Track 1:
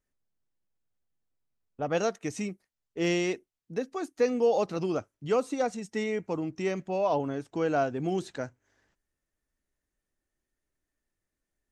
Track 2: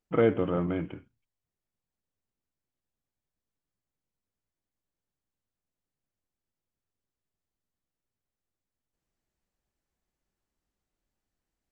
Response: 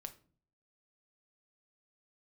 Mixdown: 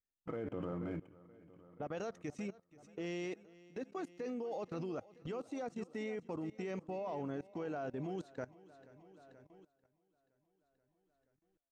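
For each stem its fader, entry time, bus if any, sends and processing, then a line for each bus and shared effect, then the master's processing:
-4.0 dB, 0.00 s, no send, echo send -14.5 dB, peak limiter -22.5 dBFS, peak gain reduction 7.5 dB
-4.5 dB, 0.15 s, no send, echo send -16.5 dB, median filter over 9 samples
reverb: none
echo: feedback delay 480 ms, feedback 56%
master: treble shelf 4.9 kHz -8.5 dB; level held to a coarse grid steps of 20 dB

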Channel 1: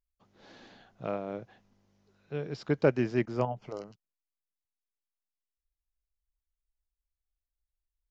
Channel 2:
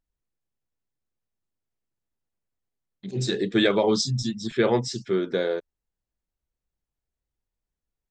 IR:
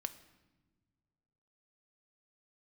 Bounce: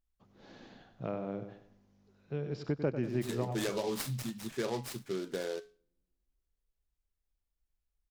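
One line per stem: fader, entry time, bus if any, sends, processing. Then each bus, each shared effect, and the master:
-3.5 dB, 0.00 s, no send, echo send -10.5 dB, bass shelf 420 Hz +7.5 dB
-3.0 dB, 0.00 s, send -24 dB, no echo send, feedback comb 140 Hz, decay 0.33 s, harmonics all, mix 60%; delay time shaken by noise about 3.7 kHz, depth 0.049 ms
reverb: on, pre-delay 4 ms
echo: feedback delay 96 ms, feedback 37%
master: compression 2:1, threshold -34 dBFS, peak gain reduction 9.5 dB

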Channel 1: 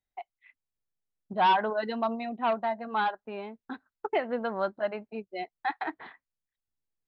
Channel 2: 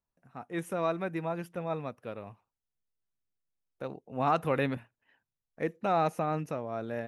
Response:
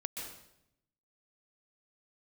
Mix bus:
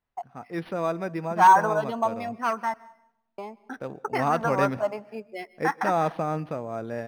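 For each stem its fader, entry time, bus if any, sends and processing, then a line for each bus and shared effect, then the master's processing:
-2.0 dB, 0.00 s, muted 2.74–3.38 s, send -18 dB, peaking EQ 1.2 kHz +12 dB 1.7 oct; LFO notch saw down 0.68 Hz 440–3000 Hz
+2.5 dB, 0.00 s, send -19.5 dB, none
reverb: on, RT60 0.80 s, pre-delay 118 ms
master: decimation joined by straight lines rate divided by 6×

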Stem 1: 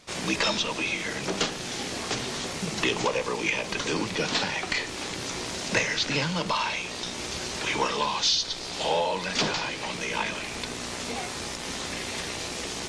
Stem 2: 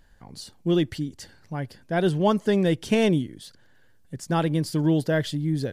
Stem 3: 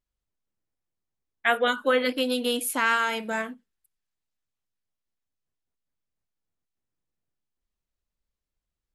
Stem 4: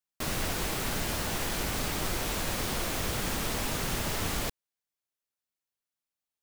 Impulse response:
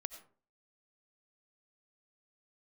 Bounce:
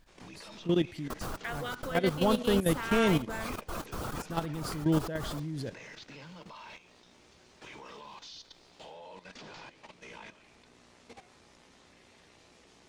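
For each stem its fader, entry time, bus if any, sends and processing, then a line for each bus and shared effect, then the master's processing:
-18.5 dB, 0.00 s, send -3 dB, treble shelf 3.5 kHz -7.5 dB
-7.0 dB, 0.00 s, send -4 dB, none
-7.5 dB, 0.00 s, send -15.5 dB, three bands compressed up and down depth 70%
-0.5 dB, 0.90 s, send -22 dB, trance gate "xxx.xx.x" 194 bpm -60 dB; reverb removal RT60 1.2 s; resonant high shelf 1.6 kHz -6.5 dB, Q 3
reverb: on, RT60 0.45 s, pre-delay 50 ms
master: level held to a coarse grid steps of 12 dB

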